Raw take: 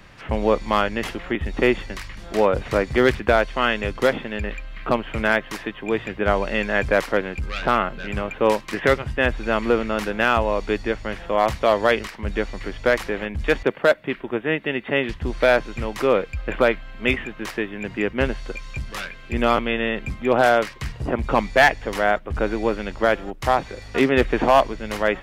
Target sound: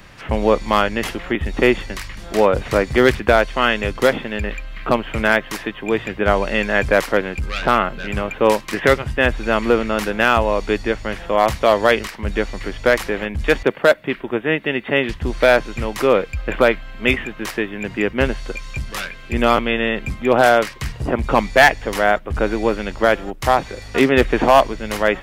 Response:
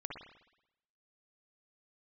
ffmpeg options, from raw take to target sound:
-af "highshelf=f=7.3k:g=6.5,volume=3.5dB"

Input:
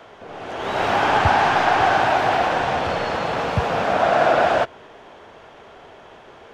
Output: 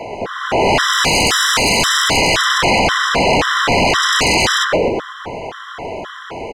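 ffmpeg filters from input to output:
-filter_complex "[0:a]asplit=7[a][b][c][d][e][f][g];[b]adelay=122,afreqshift=-81,volume=-9dB[h];[c]adelay=244,afreqshift=-162,volume=-14.7dB[i];[d]adelay=366,afreqshift=-243,volume=-20.4dB[j];[e]adelay=488,afreqshift=-324,volume=-26dB[k];[f]adelay=610,afreqshift=-405,volume=-31.7dB[l];[g]adelay=732,afreqshift=-486,volume=-37.4dB[m];[a][h][i][j][k][l][m]amix=inputs=7:normalize=0,aeval=exprs='0.668*sin(PI/2*8.91*val(0)/0.668)':c=same,afftfilt=real='re*gt(sin(2*PI*1.9*pts/sr)*(1-2*mod(floor(b*sr/1024/1000),2)),0)':imag='im*gt(sin(2*PI*1.9*pts/sr)*(1-2*mod(floor(b*sr/1024/1000),2)),0)':win_size=1024:overlap=0.75,volume=-4.5dB"

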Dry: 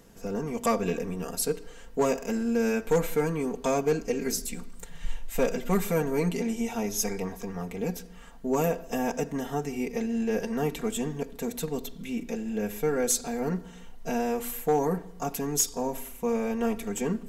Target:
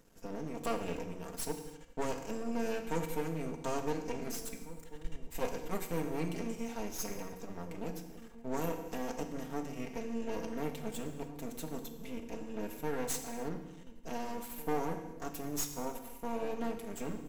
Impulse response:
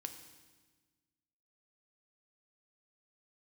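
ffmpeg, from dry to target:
-filter_complex "[0:a]aeval=exprs='max(val(0),0)':c=same,asplit=2[a][b];[b]adelay=1749,volume=-14dB,highshelf=f=4k:g=-39.4[c];[a][c]amix=inputs=2:normalize=0[d];[1:a]atrim=start_sample=2205,afade=t=out:st=0.37:d=0.01,atrim=end_sample=16758[e];[d][e]afir=irnorm=-1:irlink=0,volume=-3dB"

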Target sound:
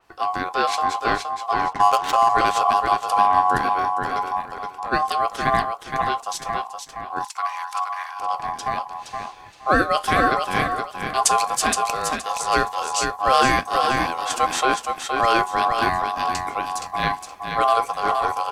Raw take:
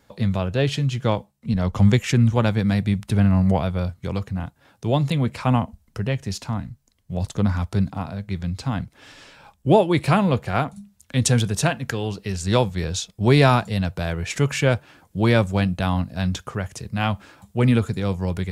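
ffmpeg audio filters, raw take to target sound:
-filter_complex "[0:a]asplit=3[a][b][c];[a]afade=t=out:st=4.41:d=0.02[d];[b]acompressor=threshold=-30dB:ratio=4,afade=t=in:st=4.41:d=0.02,afade=t=out:st=4.91:d=0.02[e];[c]afade=t=in:st=4.91:d=0.02[f];[d][e][f]amix=inputs=3:normalize=0,aecho=1:1:470|940|1410:0.531|0.117|0.0257,flanger=delay=5:depth=6.2:regen=-72:speed=0.14:shape=sinusoidal,aeval=exprs='val(0)*sin(2*PI*920*n/s)':c=same,asettb=1/sr,asplit=3[g][h][i];[g]atrim=end=1.734[j];[h]atrim=start=1.73:end=2.29,asetpts=PTS-STARTPTS,afade=t=in:d=0.004:c=qsin,afade=t=out:st=0.556:d=0.004:c=qsin,adynamicsmooth=sensitivity=5.5:basefreq=1.4k[k];[i]atrim=start=2.286[l];[j][k]acrossfade=d=0.004:c1=hsin:c2=qsin[m];[m][l]acrossfade=d=0.004:c1=qsin:c2=hsin,asplit=3[n][o][p];[n]afade=t=out:st=7.24:d=0.02[q];[o]highpass=f=940:w=0.5412,highpass=f=940:w=1.3066,afade=t=in:st=7.24:d=0.02,afade=t=out:st=8.19:d=0.02[r];[p]afade=t=in:st=8.19:d=0.02[s];[q][r][s]amix=inputs=3:normalize=0,alimiter=level_in=10dB:limit=-1dB:release=50:level=0:latency=1,adynamicequalizer=threshold=0.0178:dfrequency=4500:dqfactor=0.7:tfrequency=4500:tqfactor=0.7:attack=5:release=100:ratio=0.375:range=3:mode=boostabove:tftype=highshelf,volume=-4dB"

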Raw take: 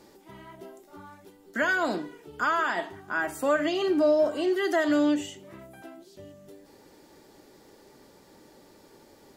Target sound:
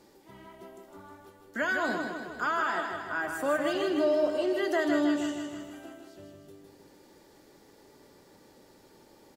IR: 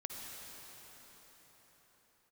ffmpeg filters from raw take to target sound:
-af "aecho=1:1:157|314|471|628|785|942|1099|1256:0.531|0.308|0.179|0.104|0.0601|0.0348|0.0202|0.0117,volume=-4dB"

